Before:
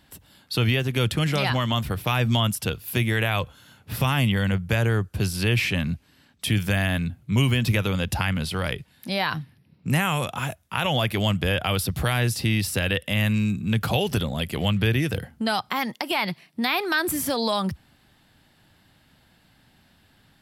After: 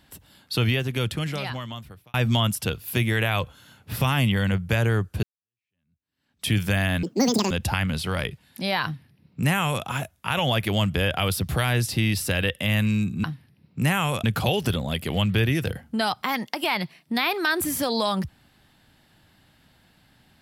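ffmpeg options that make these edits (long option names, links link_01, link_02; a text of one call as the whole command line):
ffmpeg -i in.wav -filter_complex "[0:a]asplit=7[link_01][link_02][link_03][link_04][link_05][link_06][link_07];[link_01]atrim=end=2.14,asetpts=PTS-STARTPTS,afade=type=out:start_time=0.55:duration=1.59[link_08];[link_02]atrim=start=2.14:end=5.23,asetpts=PTS-STARTPTS,afade=type=in:duration=0.004:curve=hsin,afade=type=out:start_time=3.086:duration=0.004:curve=hsin[link_09];[link_03]atrim=start=5.23:end=7.034,asetpts=PTS-STARTPTS,afade=type=in:duration=1.22:curve=exp[link_10];[link_04]atrim=start=7.03:end=7.98,asetpts=PTS-STARTPTS,asetrate=87759,aresample=44100[link_11];[link_05]atrim=start=7.976:end=13.712[link_12];[link_06]atrim=start=9.318:end=10.322[link_13];[link_07]atrim=start=13.708[link_14];[link_08][link_09][link_10]concat=n=3:v=0:a=1[link_15];[link_15][link_11]acrossfade=duration=0.004:curve1=hsin:curve2=hsin[link_16];[link_16][link_12]acrossfade=duration=0.004:curve1=hsin:curve2=hsin[link_17];[link_17][link_13]acrossfade=duration=0.004:curve1=hsin:curve2=hsin[link_18];[link_18][link_14]acrossfade=duration=0.004:curve1=hsin:curve2=hsin" out.wav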